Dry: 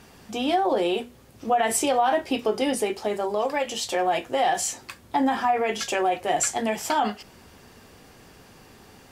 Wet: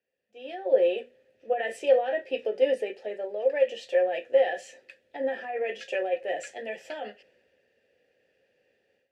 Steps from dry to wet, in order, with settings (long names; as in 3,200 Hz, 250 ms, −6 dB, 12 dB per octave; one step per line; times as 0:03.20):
formant filter e
automatic gain control gain up to 11.5 dB
multiband upward and downward expander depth 40%
level −6.5 dB